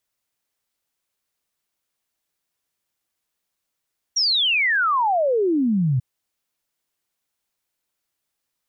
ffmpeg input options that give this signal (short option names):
-f lavfi -i "aevalsrc='0.15*clip(min(t,1.84-t)/0.01,0,1)*sin(2*PI*5800*1.84/log(120/5800)*(exp(log(120/5800)*t/1.84)-1))':d=1.84:s=44100"